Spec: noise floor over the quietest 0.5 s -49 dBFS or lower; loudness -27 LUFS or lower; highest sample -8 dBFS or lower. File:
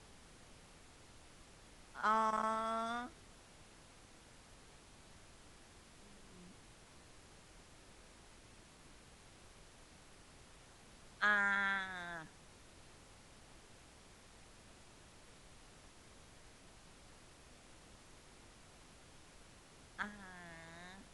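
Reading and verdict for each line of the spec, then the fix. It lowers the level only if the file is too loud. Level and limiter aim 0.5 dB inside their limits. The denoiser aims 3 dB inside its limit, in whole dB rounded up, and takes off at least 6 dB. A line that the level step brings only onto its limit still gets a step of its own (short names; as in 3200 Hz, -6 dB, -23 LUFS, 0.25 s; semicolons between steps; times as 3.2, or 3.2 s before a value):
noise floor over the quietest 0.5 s -61 dBFS: OK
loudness -38.0 LUFS: OK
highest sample -20.0 dBFS: OK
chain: none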